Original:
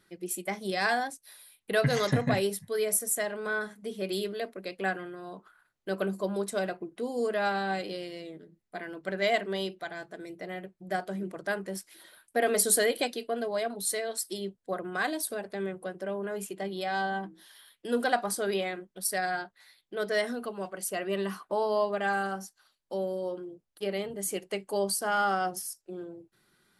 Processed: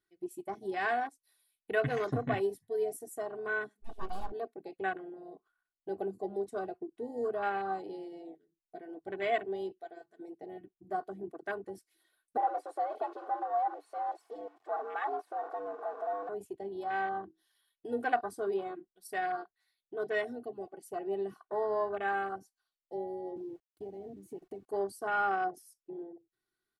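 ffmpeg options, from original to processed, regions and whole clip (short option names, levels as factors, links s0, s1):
-filter_complex "[0:a]asettb=1/sr,asplit=3[s0][s1][s2];[s0]atrim=end=3.824[s3];[s1]atrim=start=3.82:end=4.32,asetpts=PTS-STARTPTS,afade=t=in:d=0.004:c=qsin,afade=t=out:st=0.496:d=0.004:c=qsin,equalizer=f=1000:w=0.6:g=7.5,aeval=exprs='abs(val(0))':c=same[s4];[s2]atrim=start=4.316[s5];[s3][s4]acrossfade=d=0.004:c1=hsin:c2=qsin[s6];[s6][s5]acrossfade=d=0.004:c1=qsin:c2=hsin,asettb=1/sr,asplit=3[s7][s8][s9];[s7]atrim=end=12.374[s10];[s8]atrim=start=12.37:end=16.29,asetpts=PTS-STARTPTS,afade=t=in:d=0.004:c=qsin,afade=t=out:st=3.916:d=0.004:c=qsin,aeval=exprs='val(0)+0.5*0.0473*sgn(val(0))':c=same,bandpass=f=780:t=q:w=1.3,afreqshift=100[s11];[s9]atrim=start=16.286[s12];[s10][s11]acrossfade=d=0.004:c1=hsin:c2=qsin[s13];[s13][s12]acrossfade=d=0.004:c1=qsin:c2=hsin,asettb=1/sr,asplit=3[s14][s15][s16];[s14]atrim=end=23.364[s17];[s15]atrim=start=23.36:end=24.68,asetpts=PTS-STARTPTS,afade=t=in:d=0.004:c=qsin,afade=t=out:st=1.316:d=0.004:c=qsin,equalizer=f=190:t=o:w=2.8:g=15,acompressor=threshold=0.0141:ratio=5:attack=3.2:release=140:knee=1:detection=peak,aeval=exprs='val(0)*gte(abs(val(0)),0.00335)':c=same[s18];[s16]atrim=start=24.676[s19];[s17][s18]acrossfade=d=0.004:c1=hsin:c2=qsin[s20];[s20][s19]acrossfade=d=0.004:c1=qsin:c2=hsin,afwtdn=0.0251,aecho=1:1:2.7:0.63,volume=0.531"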